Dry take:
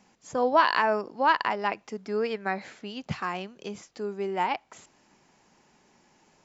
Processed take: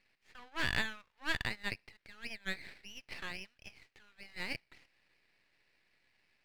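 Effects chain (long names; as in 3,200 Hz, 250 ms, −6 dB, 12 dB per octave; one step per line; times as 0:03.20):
flat-topped band-pass 2,200 Hz, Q 1.9
half-wave rectification
level +2 dB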